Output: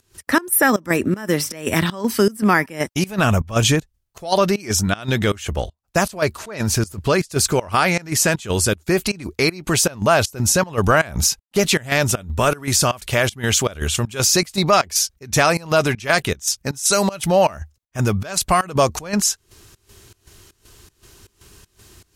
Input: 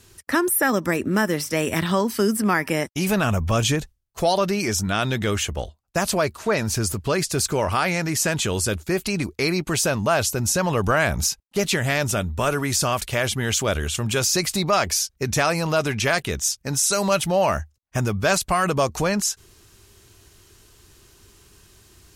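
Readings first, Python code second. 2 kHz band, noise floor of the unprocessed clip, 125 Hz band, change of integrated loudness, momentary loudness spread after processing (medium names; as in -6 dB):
+3.0 dB, -62 dBFS, +3.0 dB, +3.0 dB, 6 LU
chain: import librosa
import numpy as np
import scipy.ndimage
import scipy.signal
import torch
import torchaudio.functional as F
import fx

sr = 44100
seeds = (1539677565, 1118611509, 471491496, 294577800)

y = fx.volume_shaper(x, sr, bpm=158, per_beat=1, depth_db=-21, release_ms=142.0, shape='slow start')
y = F.gain(torch.from_numpy(y), 5.0).numpy()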